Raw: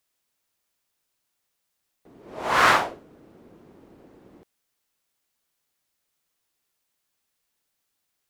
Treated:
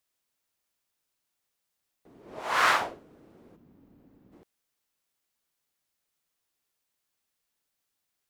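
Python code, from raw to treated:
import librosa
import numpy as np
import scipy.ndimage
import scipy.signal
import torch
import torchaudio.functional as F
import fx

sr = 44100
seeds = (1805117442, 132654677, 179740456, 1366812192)

y = fx.low_shelf(x, sr, hz=410.0, db=-11.0, at=(2.4, 2.81))
y = fx.spec_box(y, sr, start_s=3.56, length_s=0.77, low_hz=320.0, high_hz=12000.0, gain_db=-9)
y = y * 10.0 ** (-4.0 / 20.0)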